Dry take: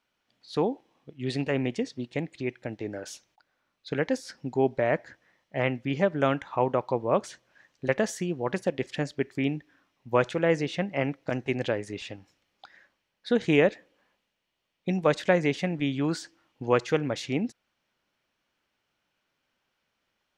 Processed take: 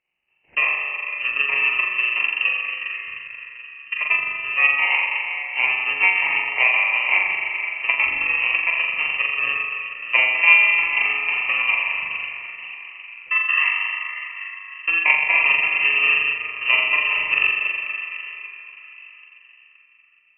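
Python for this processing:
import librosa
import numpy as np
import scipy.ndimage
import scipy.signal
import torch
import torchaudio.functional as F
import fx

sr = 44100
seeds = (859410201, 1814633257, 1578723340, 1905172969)

y = fx.bit_reversed(x, sr, seeds[0], block=32)
y = fx.fixed_phaser(y, sr, hz=1100.0, stages=4, at=(13.3, 13.71), fade=0.02)
y = fx.air_absorb(y, sr, metres=190.0)
y = fx.fixed_phaser(y, sr, hz=420.0, stages=8, at=(2.56, 4.01))
y = fx.room_flutter(y, sr, wall_m=7.2, rt60_s=1.2)
y = fx.rev_plate(y, sr, seeds[1], rt60_s=4.7, hf_ratio=0.55, predelay_ms=0, drr_db=2.0)
y = fx.transient(y, sr, attack_db=5, sustain_db=-4)
y = fx.freq_invert(y, sr, carrier_hz=2900)
y = F.gain(torch.from_numpy(y), 3.0).numpy()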